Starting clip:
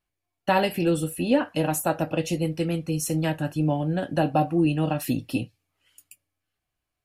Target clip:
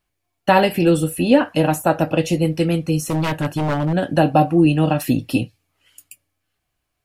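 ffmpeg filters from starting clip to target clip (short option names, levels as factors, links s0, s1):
-filter_complex "[0:a]acrossover=split=2500[s0][s1];[s1]alimiter=level_in=1.5:limit=0.0631:level=0:latency=1:release=265,volume=0.668[s2];[s0][s2]amix=inputs=2:normalize=0,asettb=1/sr,asplit=3[s3][s4][s5];[s3]atrim=end=3.074[s6];[s4]atrim=start=3.07:end=3.93,asetpts=PTS-STARTPTS,afade=t=in:d=0.004:c=qsin,afade=t=out:st=0.856:d=0.004:c=qsin,aeval=exprs='0.0841*(abs(mod(val(0)/0.0841+3,4)-2)-1)':c=same[s7];[s5]atrim=start=3.926[s8];[s6][s7]acrossfade=d=0.004:c1=hsin:c2=qsin[s9];[s9][s8]acrossfade=d=0.004:c1=qsin:c2=hsin,volume=2.37"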